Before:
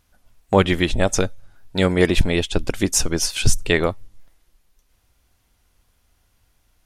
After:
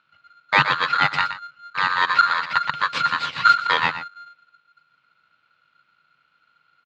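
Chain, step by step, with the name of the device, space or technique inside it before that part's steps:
0:01.22–0:02.48: parametric band 1,200 Hz −6.5 dB 2.3 octaves
single-tap delay 120 ms −11 dB
ring modulator pedal into a guitar cabinet (ring modulator with a square carrier 1,400 Hz; loudspeaker in its box 110–3,500 Hz, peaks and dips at 150 Hz +8 dB, 210 Hz −4 dB, 380 Hz −9 dB, 700 Hz −7 dB, 1,700 Hz −4 dB, 2,600 Hz +5 dB)

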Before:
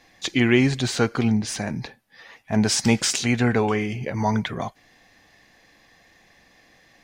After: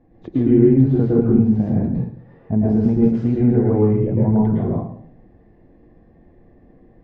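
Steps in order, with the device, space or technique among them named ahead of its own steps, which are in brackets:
television next door (downward compressor 5 to 1, threshold −22 dBFS, peak gain reduction 9 dB; low-pass filter 340 Hz 12 dB per octave; convolution reverb RT60 0.60 s, pre-delay 102 ms, DRR −5 dB)
level +8.5 dB

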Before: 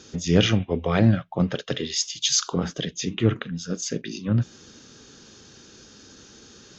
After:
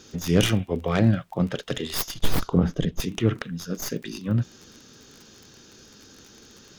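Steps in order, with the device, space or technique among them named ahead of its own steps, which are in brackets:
record under a worn stylus (stylus tracing distortion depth 0.2 ms; surface crackle 30 per second −34 dBFS; pink noise bed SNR 41 dB)
0:02.14–0:03.00: spectral tilt −3 dB per octave
level −1.5 dB

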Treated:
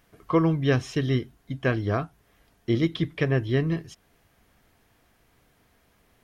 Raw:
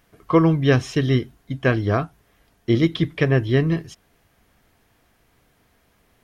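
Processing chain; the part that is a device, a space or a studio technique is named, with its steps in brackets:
parallel compression (in parallel at −4.5 dB: downward compressor, threshold −35 dBFS, peak gain reduction 22.5 dB)
on the sum: level −6 dB

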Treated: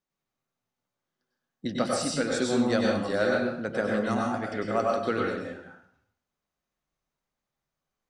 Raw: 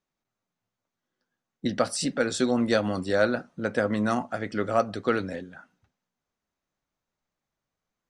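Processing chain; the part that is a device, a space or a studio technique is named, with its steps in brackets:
bathroom (convolution reverb RT60 0.65 s, pre-delay 93 ms, DRR −1.5 dB)
level −4.5 dB

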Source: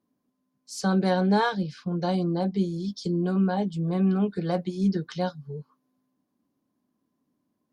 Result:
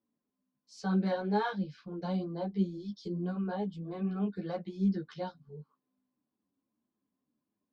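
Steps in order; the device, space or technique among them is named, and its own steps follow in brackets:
string-machine ensemble chorus (string-ensemble chorus; low-pass filter 4,300 Hz 12 dB per octave)
level −6 dB

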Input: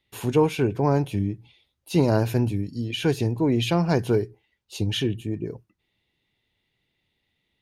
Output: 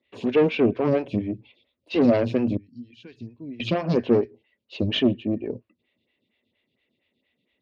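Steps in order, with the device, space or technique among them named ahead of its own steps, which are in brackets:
0:02.57–0:03.60: guitar amp tone stack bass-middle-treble 6-0-2
vibe pedal into a guitar amplifier (phaser with staggered stages 4.3 Hz; tube saturation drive 22 dB, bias 0.6; loudspeaker in its box 85–4,300 Hz, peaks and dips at 140 Hz −6 dB, 240 Hz +9 dB, 570 Hz +7 dB, 840 Hz −9 dB, 1,400 Hz −6 dB, 2,600 Hz +4 dB)
level +7.5 dB

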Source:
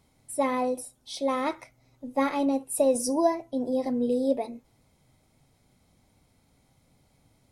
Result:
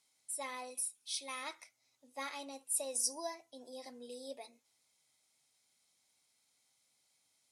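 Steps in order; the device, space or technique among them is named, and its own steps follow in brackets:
0:00.70–0:01.43: thirty-one-band graphic EQ 630 Hz −12 dB, 2,500 Hz +9 dB, 10,000 Hz +8 dB
piezo pickup straight into a mixer (low-pass filter 7,900 Hz 12 dB per octave; first difference)
level +2 dB

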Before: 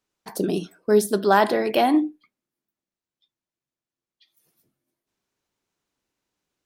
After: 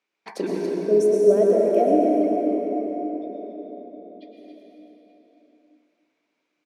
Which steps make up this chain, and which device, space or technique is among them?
gain on a spectral selection 0:00.47–0:02.16, 730–5,400 Hz −27 dB
station announcement (band-pass filter 300–4,800 Hz; parametric band 2,300 Hz +11 dB 0.31 octaves; loudspeakers that aren't time-aligned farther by 44 metres −12 dB, 96 metres −9 dB; convolution reverb RT60 4.7 s, pre-delay 100 ms, DRR −1.5 dB)
single-tap delay 879 ms −21.5 dB

